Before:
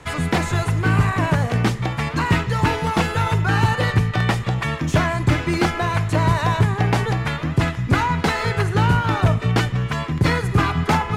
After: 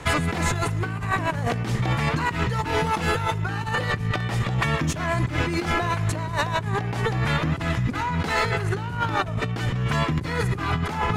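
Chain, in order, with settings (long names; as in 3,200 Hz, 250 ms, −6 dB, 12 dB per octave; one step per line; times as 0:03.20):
compressor whose output falls as the input rises −25 dBFS, ratio −1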